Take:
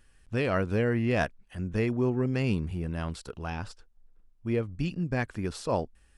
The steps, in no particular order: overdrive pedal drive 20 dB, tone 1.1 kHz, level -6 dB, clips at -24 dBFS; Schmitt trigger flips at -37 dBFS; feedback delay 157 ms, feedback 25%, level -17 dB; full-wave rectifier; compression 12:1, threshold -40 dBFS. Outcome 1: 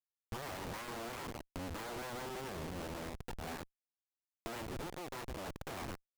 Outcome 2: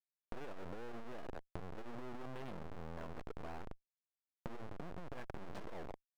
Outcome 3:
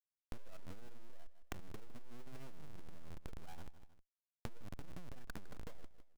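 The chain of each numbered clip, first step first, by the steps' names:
feedback delay > full-wave rectifier > overdrive pedal > Schmitt trigger > compression; feedback delay > Schmitt trigger > full-wave rectifier > overdrive pedal > compression; overdrive pedal > Schmitt trigger > full-wave rectifier > feedback delay > compression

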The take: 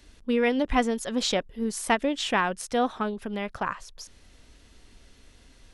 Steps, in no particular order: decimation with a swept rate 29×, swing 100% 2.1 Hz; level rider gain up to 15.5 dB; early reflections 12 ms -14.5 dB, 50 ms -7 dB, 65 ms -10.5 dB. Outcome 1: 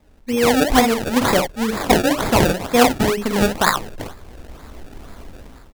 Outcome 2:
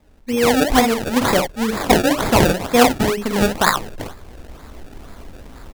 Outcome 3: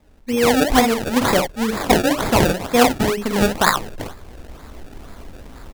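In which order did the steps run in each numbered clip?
level rider > early reflections > decimation with a swept rate; early reflections > decimation with a swept rate > level rider; early reflections > level rider > decimation with a swept rate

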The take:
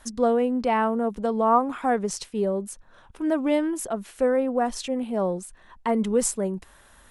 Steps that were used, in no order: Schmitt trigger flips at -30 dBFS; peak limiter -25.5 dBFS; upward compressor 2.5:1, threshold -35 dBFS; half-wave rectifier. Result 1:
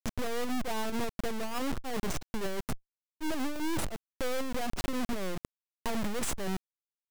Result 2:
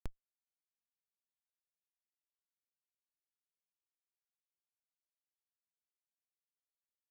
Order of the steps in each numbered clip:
Schmitt trigger > peak limiter > upward compressor > half-wave rectifier; upward compressor > half-wave rectifier > Schmitt trigger > peak limiter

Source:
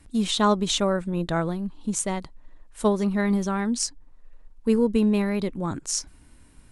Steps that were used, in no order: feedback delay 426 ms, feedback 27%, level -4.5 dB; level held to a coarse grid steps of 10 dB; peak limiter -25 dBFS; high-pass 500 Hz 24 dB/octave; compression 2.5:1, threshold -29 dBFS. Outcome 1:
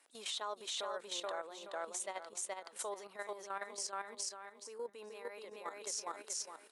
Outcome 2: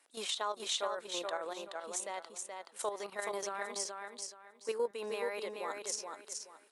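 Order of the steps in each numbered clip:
feedback delay > compression > peak limiter > high-pass > level held to a coarse grid; high-pass > compression > level held to a coarse grid > peak limiter > feedback delay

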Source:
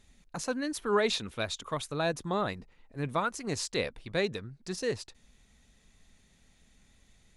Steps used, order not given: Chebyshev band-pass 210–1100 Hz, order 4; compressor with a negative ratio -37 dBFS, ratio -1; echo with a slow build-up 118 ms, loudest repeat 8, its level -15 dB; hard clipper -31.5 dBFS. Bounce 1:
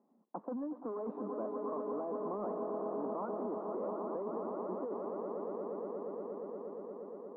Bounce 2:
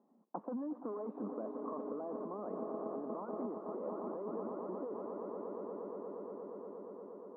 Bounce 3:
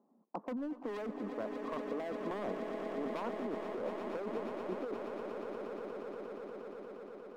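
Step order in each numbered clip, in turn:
echo with a slow build-up > hard clipper > Chebyshev band-pass > compressor with a negative ratio; hard clipper > echo with a slow build-up > compressor with a negative ratio > Chebyshev band-pass; Chebyshev band-pass > hard clipper > echo with a slow build-up > compressor with a negative ratio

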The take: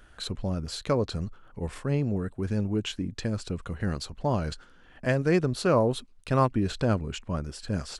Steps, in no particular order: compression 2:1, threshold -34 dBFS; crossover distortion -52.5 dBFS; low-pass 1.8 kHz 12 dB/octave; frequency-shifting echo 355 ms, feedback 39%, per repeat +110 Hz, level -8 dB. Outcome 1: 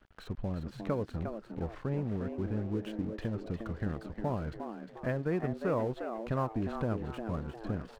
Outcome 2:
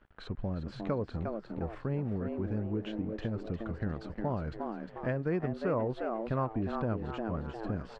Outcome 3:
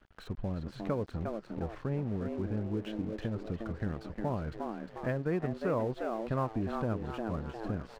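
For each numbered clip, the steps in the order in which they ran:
compression > low-pass > crossover distortion > frequency-shifting echo; frequency-shifting echo > crossover distortion > compression > low-pass; frequency-shifting echo > compression > low-pass > crossover distortion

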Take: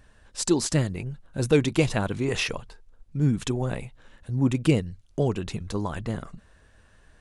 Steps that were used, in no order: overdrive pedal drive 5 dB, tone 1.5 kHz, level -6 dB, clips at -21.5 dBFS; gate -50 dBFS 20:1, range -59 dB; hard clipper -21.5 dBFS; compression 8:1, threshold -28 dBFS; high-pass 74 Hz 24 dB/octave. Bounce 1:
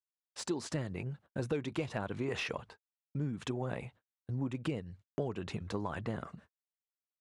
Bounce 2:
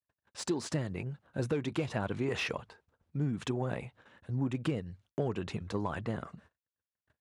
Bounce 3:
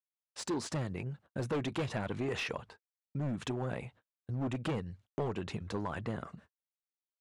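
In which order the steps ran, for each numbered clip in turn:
high-pass > compression > gate > overdrive pedal > hard clipper; gate > overdrive pedal > compression > hard clipper > high-pass; high-pass > gate > hard clipper > compression > overdrive pedal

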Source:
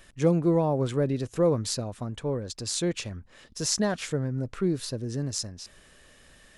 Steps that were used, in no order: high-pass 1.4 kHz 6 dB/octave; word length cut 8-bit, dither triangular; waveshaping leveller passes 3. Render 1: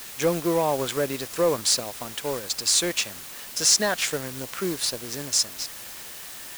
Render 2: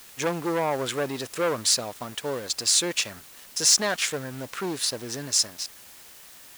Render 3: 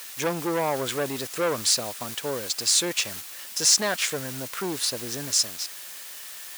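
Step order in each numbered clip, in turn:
high-pass > word length cut > waveshaping leveller; waveshaping leveller > high-pass > word length cut; word length cut > waveshaping leveller > high-pass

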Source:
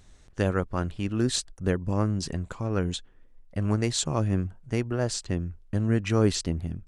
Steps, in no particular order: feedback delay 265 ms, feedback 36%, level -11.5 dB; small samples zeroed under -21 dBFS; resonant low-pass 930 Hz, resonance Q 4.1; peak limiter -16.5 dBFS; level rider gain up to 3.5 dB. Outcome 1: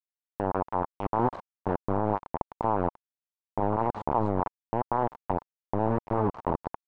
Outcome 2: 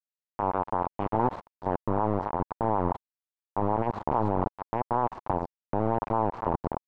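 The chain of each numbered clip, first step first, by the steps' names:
feedback delay > small samples zeroed > level rider > peak limiter > resonant low-pass; level rider > feedback delay > peak limiter > small samples zeroed > resonant low-pass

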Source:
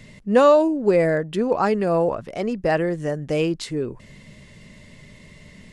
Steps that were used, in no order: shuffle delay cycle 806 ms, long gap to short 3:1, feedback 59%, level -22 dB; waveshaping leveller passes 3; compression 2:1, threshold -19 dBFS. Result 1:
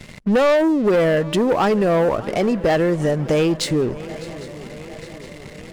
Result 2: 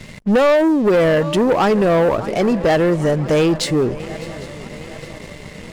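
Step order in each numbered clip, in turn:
waveshaping leveller > shuffle delay > compression; shuffle delay > compression > waveshaping leveller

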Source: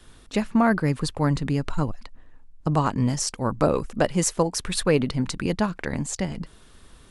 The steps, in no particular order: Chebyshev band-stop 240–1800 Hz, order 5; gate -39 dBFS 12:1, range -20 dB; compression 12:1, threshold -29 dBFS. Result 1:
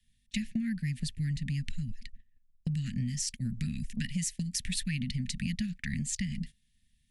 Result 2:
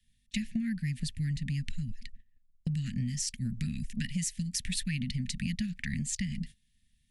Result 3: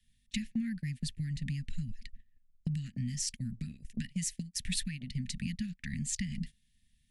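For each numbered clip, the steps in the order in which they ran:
Chebyshev band-stop > compression > gate; Chebyshev band-stop > gate > compression; compression > Chebyshev band-stop > gate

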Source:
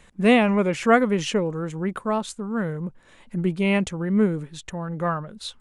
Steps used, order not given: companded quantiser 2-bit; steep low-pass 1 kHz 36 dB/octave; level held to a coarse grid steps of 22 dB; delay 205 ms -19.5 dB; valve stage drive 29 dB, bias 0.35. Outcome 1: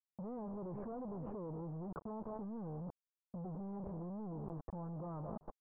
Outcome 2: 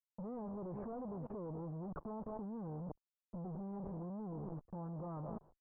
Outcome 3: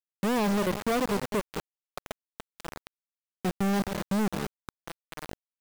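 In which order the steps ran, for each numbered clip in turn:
delay > valve stage > companded quantiser > steep low-pass > level held to a coarse grid; delay > companded quantiser > valve stage > steep low-pass > level held to a coarse grid; steep low-pass > level held to a coarse grid > delay > valve stage > companded quantiser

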